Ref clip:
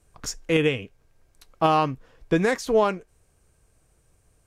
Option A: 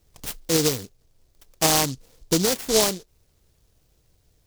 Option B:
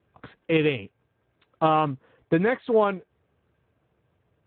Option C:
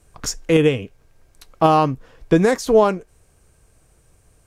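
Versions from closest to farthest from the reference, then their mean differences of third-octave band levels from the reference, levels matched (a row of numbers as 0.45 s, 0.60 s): C, B, A; 1.5 dB, 5.0 dB, 10.5 dB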